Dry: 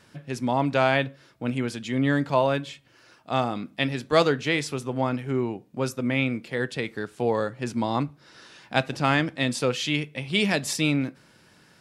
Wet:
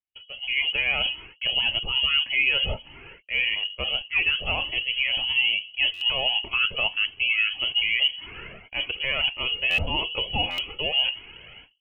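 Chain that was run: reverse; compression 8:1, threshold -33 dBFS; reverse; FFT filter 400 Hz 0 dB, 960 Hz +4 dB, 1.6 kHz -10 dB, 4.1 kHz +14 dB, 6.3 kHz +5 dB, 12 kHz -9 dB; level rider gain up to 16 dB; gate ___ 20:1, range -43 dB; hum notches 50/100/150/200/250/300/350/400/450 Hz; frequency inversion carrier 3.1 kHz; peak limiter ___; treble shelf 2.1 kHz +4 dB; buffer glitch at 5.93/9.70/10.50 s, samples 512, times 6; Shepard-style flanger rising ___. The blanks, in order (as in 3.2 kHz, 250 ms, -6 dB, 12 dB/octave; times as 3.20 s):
-40 dBFS, -11 dBFS, 1.7 Hz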